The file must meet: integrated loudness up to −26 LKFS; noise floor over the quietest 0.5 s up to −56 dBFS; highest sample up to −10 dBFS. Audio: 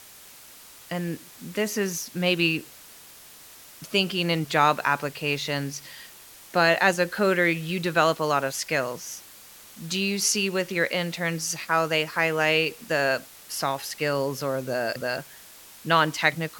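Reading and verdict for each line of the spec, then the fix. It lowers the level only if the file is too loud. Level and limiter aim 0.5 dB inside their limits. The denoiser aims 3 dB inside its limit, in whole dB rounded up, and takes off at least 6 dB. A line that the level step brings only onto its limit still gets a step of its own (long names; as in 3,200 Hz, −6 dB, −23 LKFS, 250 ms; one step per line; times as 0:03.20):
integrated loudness −25.0 LKFS: out of spec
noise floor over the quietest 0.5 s −48 dBFS: out of spec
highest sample −5.5 dBFS: out of spec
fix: broadband denoise 10 dB, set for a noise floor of −48 dBFS
level −1.5 dB
brickwall limiter −10.5 dBFS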